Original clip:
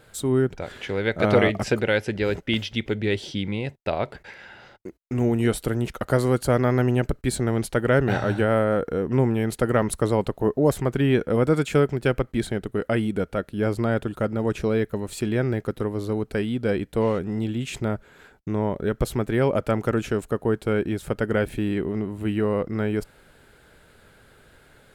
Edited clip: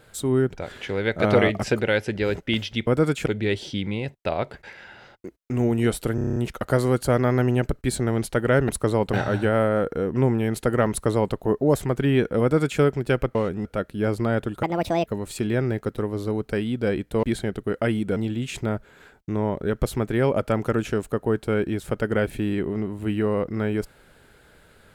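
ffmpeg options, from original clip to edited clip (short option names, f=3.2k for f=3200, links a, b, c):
-filter_complex "[0:a]asplit=18[a][b][c][d][e][f][g][h][i][j][k][l][m][n][o][p][q][r];[a]atrim=end=2.872[s];[b]atrim=start=11.368:end=11.762[t];[c]atrim=start=2.868:end=5.792[u];[d]atrim=start=5.758:end=5.792[v];[e]atrim=start=5.758:end=5.792[w];[f]atrim=start=5.758:end=5.792[x];[g]atrim=start=5.758:end=5.792[y];[h]atrim=start=5.758:end=5.792[z];[i]atrim=start=5.758:end=5.792[aa];[j]atrim=start=5.758:end=8.092[ab];[k]atrim=start=9.868:end=10.312[ac];[l]atrim=start=8.088:end=12.312[ad];[m]atrim=start=17.048:end=17.352[ae];[n]atrim=start=13.238:end=14.224[af];[o]atrim=start=14.22:end=14.88,asetpts=PTS-STARTPTS,asetrate=67473,aresample=44100[ag];[p]atrim=start=14.876:end=17.052[ah];[q]atrim=start=12.308:end=13.242[ai];[r]atrim=start=17.348[aj];[s][t]acrossfade=d=0.004:c1=hsin:c2=hsin[ak];[ak][u]acrossfade=d=0.004:c1=hsin:c2=hsin[al];[al][v]acrossfade=d=0.004:c1=hsin:c2=hsin[am];[am][w]acrossfade=d=0.004:c1=hsin:c2=hsin[an];[an][x]acrossfade=d=0.004:c1=hsin:c2=hsin[ao];[ao][y]acrossfade=d=0.004:c1=hsin:c2=hsin[ap];[ap][z]acrossfade=d=0.004:c1=hsin:c2=hsin[aq];[aq][aa]acrossfade=d=0.004:c1=hsin:c2=hsin[ar];[ar][ab]acrossfade=d=0.004:c1=hsin:c2=hsin[as];[as][ac]acrossfade=d=0.004:c1=hsin:c2=hsin[at];[at][ad]acrossfade=d=0.004:c1=hsin:c2=hsin[au];[au][ae]acrossfade=d=0.004:c1=hsin:c2=hsin[av];[av][af]acrossfade=d=0.004:c1=hsin:c2=hsin[aw];[aw][ag]acrossfade=d=0.004:c1=hsin:c2=hsin[ax];[ax][ah]acrossfade=d=0.004:c1=hsin:c2=hsin[ay];[ay][ai]acrossfade=d=0.004:c1=hsin:c2=hsin[az];[az][aj]acrossfade=d=0.004:c1=hsin:c2=hsin"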